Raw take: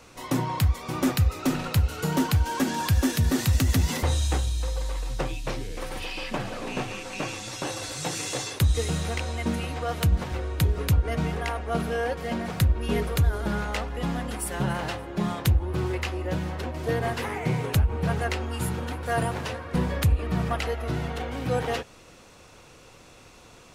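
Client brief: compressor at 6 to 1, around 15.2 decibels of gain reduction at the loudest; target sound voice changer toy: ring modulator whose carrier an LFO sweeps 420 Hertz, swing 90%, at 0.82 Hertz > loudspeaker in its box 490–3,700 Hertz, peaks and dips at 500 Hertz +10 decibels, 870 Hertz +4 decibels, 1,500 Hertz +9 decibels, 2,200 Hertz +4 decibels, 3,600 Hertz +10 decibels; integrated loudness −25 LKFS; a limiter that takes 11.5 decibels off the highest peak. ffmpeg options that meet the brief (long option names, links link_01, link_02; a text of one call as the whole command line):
ffmpeg -i in.wav -af "acompressor=threshold=-34dB:ratio=6,alimiter=level_in=7dB:limit=-24dB:level=0:latency=1,volume=-7dB,aeval=exprs='val(0)*sin(2*PI*420*n/s+420*0.9/0.82*sin(2*PI*0.82*n/s))':channel_layout=same,highpass=490,equalizer=frequency=500:width_type=q:width=4:gain=10,equalizer=frequency=870:width_type=q:width=4:gain=4,equalizer=frequency=1500:width_type=q:width=4:gain=9,equalizer=frequency=2200:width_type=q:width=4:gain=4,equalizer=frequency=3600:width_type=q:width=4:gain=10,lowpass=frequency=3700:width=0.5412,lowpass=frequency=3700:width=1.3066,volume=15.5dB" out.wav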